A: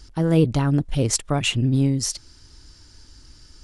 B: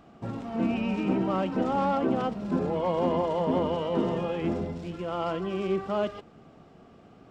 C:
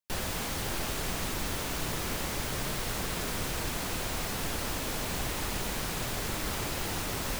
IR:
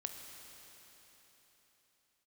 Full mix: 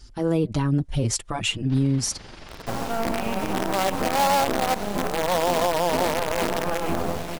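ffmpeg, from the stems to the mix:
-filter_complex "[0:a]asplit=2[a][b];[b]adelay=5.2,afreqshift=-0.95[c];[a][c]amix=inputs=2:normalize=1,volume=-4dB[d];[1:a]equalizer=f=740:w=1.4:g=13.5,tremolo=f=180:d=0.4,acrusher=bits=4:dc=4:mix=0:aa=0.000001,adelay=2450,volume=2.5dB[e];[2:a]lowpass=f=4.6k:w=0.5412,lowpass=f=4.6k:w=1.3066,tremolo=f=23:d=0.621,adelay=1600,volume=-11.5dB[f];[d][e][f]amix=inputs=3:normalize=0,acontrast=39,alimiter=limit=-14dB:level=0:latency=1:release=56"

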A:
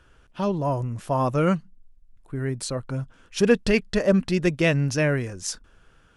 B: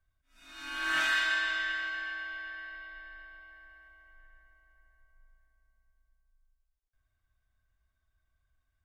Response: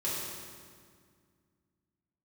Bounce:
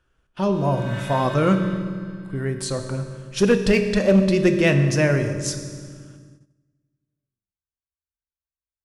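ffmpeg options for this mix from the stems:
-filter_complex "[0:a]volume=0dB,asplit=3[a][b][c];[b]volume=-9.5dB[d];[1:a]volume=-11.5dB,asplit=2[e][f];[f]volume=-6dB[g];[c]apad=whole_len=390280[h];[e][h]sidechaingate=range=-33dB:threshold=-45dB:ratio=16:detection=peak[i];[2:a]atrim=start_sample=2205[j];[d][g]amix=inputs=2:normalize=0[k];[k][j]afir=irnorm=-1:irlink=0[l];[a][i][l]amix=inputs=3:normalize=0,agate=range=-14dB:threshold=-48dB:ratio=16:detection=peak,asoftclip=type=hard:threshold=-9dB"

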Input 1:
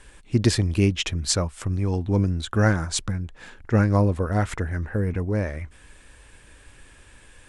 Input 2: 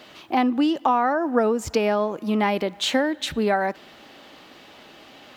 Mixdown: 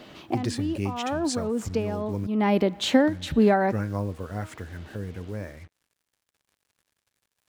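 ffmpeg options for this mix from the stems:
-filter_complex "[0:a]highpass=f=82:w=0.5412,highpass=f=82:w=1.3066,bandreject=f=157.6:t=h:w=4,bandreject=f=315.2:t=h:w=4,bandreject=f=472.8:t=h:w=4,bandreject=f=630.4:t=h:w=4,bandreject=f=788:t=h:w=4,bandreject=f=945.6:t=h:w=4,bandreject=f=1.1032k:t=h:w=4,bandreject=f=1.2608k:t=h:w=4,bandreject=f=1.4184k:t=h:w=4,bandreject=f=1.576k:t=h:w=4,bandreject=f=1.7336k:t=h:w=4,bandreject=f=1.8912k:t=h:w=4,bandreject=f=2.0488k:t=h:w=4,bandreject=f=2.2064k:t=h:w=4,bandreject=f=2.364k:t=h:w=4,bandreject=f=2.5216k:t=h:w=4,bandreject=f=2.6792k:t=h:w=4,bandreject=f=2.8368k:t=h:w=4,bandreject=f=2.9944k:t=h:w=4,bandreject=f=3.152k:t=h:w=4,bandreject=f=3.3096k:t=h:w=4,bandreject=f=3.4672k:t=h:w=4,bandreject=f=3.6248k:t=h:w=4,bandreject=f=3.7824k:t=h:w=4,bandreject=f=3.94k:t=h:w=4,bandreject=f=4.0976k:t=h:w=4,bandreject=f=4.2552k:t=h:w=4,acrusher=bits=6:mix=0:aa=0.5,volume=-9.5dB,asplit=3[a][b][c];[a]atrim=end=2.27,asetpts=PTS-STARTPTS,afade=t=out:st=2.266:d=0.004:c=hsin[d];[b]atrim=start=2.27:end=3,asetpts=PTS-STARTPTS,volume=0[e];[c]atrim=start=3,asetpts=PTS-STARTPTS,afade=t=in:d=0.004:c=hsin[f];[d][e][f]concat=n=3:v=0:a=1,asplit=2[g][h];[1:a]lowshelf=f=440:g=11.5,volume=-3.5dB[i];[h]apad=whole_len=236622[j];[i][j]sidechaincompress=threshold=-39dB:ratio=12:attack=8.3:release=266[k];[g][k]amix=inputs=2:normalize=0"

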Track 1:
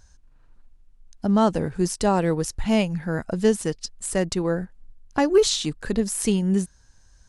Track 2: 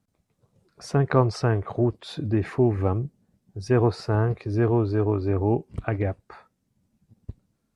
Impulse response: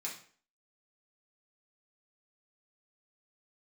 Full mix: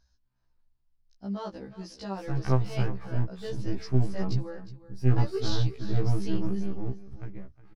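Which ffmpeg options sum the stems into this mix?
-filter_complex "[0:a]highshelf=f=6.4k:t=q:w=3:g=-9.5,volume=-13.5dB,asplit=2[a][b];[b]volume=-15.5dB[c];[1:a]aeval=exprs='if(lt(val(0),0),0.251*val(0),val(0))':c=same,asubboost=boost=5:cutoff=220,adelay=1350,volume=-7dB,afade=t=in:st=2.11:d=0.34:silence=0.251189,afade=t=out:st=6.34:d=0.73:silence=0.316228,asplit=2[d][e];[e]volume=-15.5dB[f];[c][f]amix=inputs=2:normalize=0,aecho=0:1:361:1[g];[a][d][g]amix=inputs=3:normalize=0,afftfilt=real='re*1.73*eq(mod(b,3),0)':imag='im*1.73*eq(mod(b,3),0)':win_size=2048:overlap=0.75"

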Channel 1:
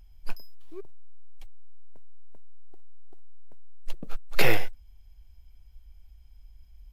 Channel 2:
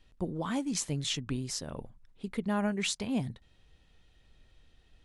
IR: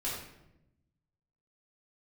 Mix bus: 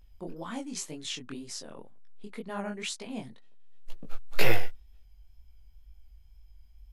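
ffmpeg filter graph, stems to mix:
-filter_complex "[0:a]volume=0dB[a];[1:a]agate=range=-33dB:threshold=-52dB:ratio=3:detection=peak,highpass=240,volume=0dB,asplit=2[b][c];[c]apad=whole_len=305578[d];[a][d]sidechaincompress=threshold=-50dB:ratio=8:attack=24:release=718[e];[e][b]amix=inputs=2:normalize=0,flanger=delay=17:depth=7.1:speed=2"

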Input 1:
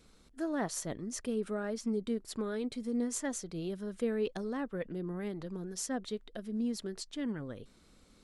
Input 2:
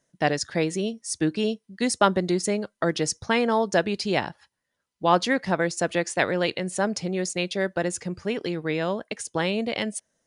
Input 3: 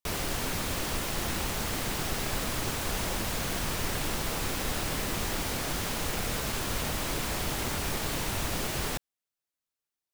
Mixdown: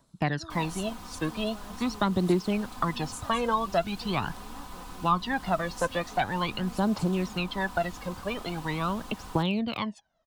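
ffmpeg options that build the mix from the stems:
-filter_complex "[0:a]highshelf=f=2.9k:g=11.5,volume=-11.5dB[a];[1:a]lowpass=f=4.1k:w=0.5412,lowpass=f=4.1k:w=1.3066,aphaser=in_gain=1:out_gain=1:delay=2:decay=0.78:speed=0.43:type=triangular,volume=-1dB[b];[2:a]acontrast=35,highshelf=f=9.6k:g=-9.5,aecho=1:1:4:0.65,adelay=450,volume=-17.5dB[c];[a][b][c]amix=inputs=3:normalize=0,equalizer=f=500:t=o:w=1:g=-8,equalizer=f=1k:t=o:w=1:g=10,equalizer=f=2k:t=o:w=1:g=-9,acrossover=split=320|1700[d][e][f];[d]acompressor=threshold=-27dB:ratio=4[g];[e]acompressor=threshold=-27dB:ratio=4[h];[f]acompressor=threshold=-33dB:ratio=4[i];[g][h][i]amix=inputs=3:normalize=0,equalizer=f=5.7k:t=o:w=0.77:g=-3"

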